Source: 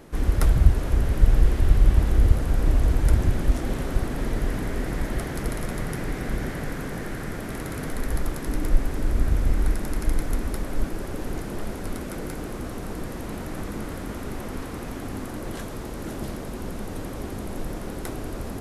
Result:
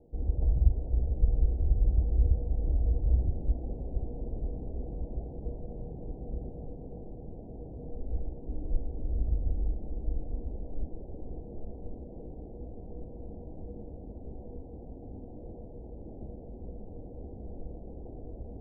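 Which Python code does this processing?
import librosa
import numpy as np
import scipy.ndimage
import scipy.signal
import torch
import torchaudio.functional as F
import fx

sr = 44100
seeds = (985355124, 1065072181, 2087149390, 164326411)

y = scipy.signal.sosfilt(scipy.signal.butter(12, 800.0, 'lowpass', fs=sr, output='sos'), x)
y = fx.peak_eq(y, sr, hz=61.0, db=9.5, octaves=0.79)
y = fx.comb_fb(y, sr, f0_hz=480.0, decay_s=0.29, harmonics='all', damping=0.0, mix_pct=80)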